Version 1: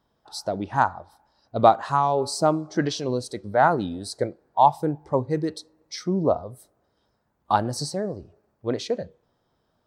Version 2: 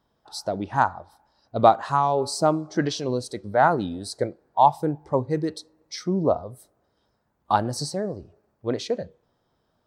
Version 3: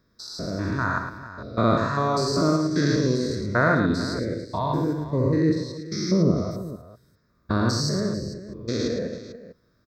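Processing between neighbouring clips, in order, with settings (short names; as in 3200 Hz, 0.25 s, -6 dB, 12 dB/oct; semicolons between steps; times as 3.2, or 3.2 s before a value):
nothing audible
stepped spectrum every 0.2 s; fixed phaser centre 3000 Hz, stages 6; on a send: tapped delay 61/109/287/445 ms -9.5/-7/-16.5/-14.5 dB; on the sum: gain +8 dB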